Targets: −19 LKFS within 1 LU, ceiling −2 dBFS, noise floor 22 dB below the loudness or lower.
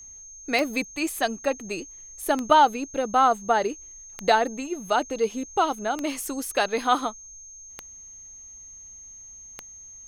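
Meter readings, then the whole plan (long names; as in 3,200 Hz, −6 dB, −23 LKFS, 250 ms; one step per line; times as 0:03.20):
number of clicks 6; interfering tone 6,400 Hz; level of the tone −42 dBFS; integrated loudness −24.5 LKFS; sample peak −4.0 dBFS; target loudness −19.0 LKFS
→ click removal
notch filter 6,400 Hz, Q 30
level +5.5 dB
brickwall limiter −2 dBFS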